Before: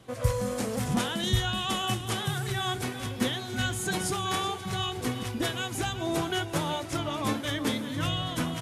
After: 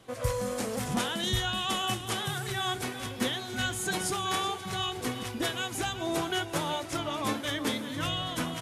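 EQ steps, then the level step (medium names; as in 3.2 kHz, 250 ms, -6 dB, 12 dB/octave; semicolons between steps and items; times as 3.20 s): peaking EQ 100 Hz -6 dB 2.6 oct; 0.0 dB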